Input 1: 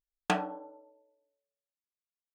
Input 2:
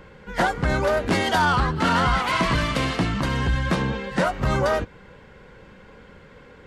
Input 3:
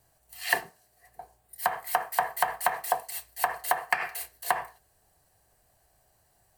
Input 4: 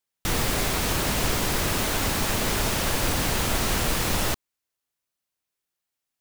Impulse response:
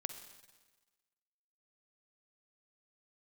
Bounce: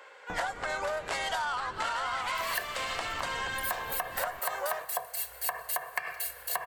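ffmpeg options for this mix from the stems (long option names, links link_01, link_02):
-filter_complex "[0:a]lowpass=1300,volume=-12.5dB[link_01];[1:a]highpass=frequency=570:width=0.5412,highpass=frequency=570:width=1.3066,equalizer=frequency=7700:width_type=o:width=0.29:gain=7,volume=-3dB,asplit=2[link_02][link_03];[link_03]volume=-7.5dB[link_04];[2:a]highshelf=frequency=11000:gain=5.5,aecho=1:1:1.8:0.75,adelay=2050,volume=-1dB,asplit=2[link_05][link_06];[link_06]volume=-6dB[link_07];[3:a]lowpass=1400,asoftclip=type=tanh:threshold=-27dB,adelay=50,volume=-12dB[link_08];[4:a]atrim=start_sample=2205[link_09];[link_04][link_07]amix=inputs=2:normalize=0[link_10];[link_10][link_09]afir=irnorm=-1:irlink=0[link_11];[link_01][link_02][link_05][link_08][link_11]amix=inputs=5:normalize=0,acompressor=threshold=-30dB:ratio=6"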